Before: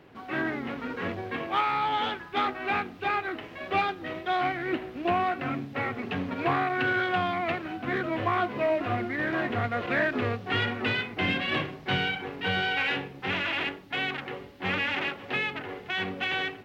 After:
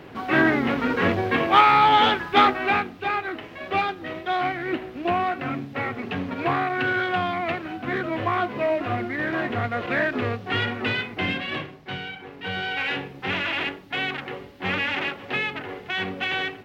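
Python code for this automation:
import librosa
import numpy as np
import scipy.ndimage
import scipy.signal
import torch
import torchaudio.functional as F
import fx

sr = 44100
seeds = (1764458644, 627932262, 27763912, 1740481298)

y = fx.gain(x, sr, db=fx.line((2.42, 11.0), (2.97, 2.5), (11.14, 2.5), (12.03, -6.5), (13.09, 3.0)))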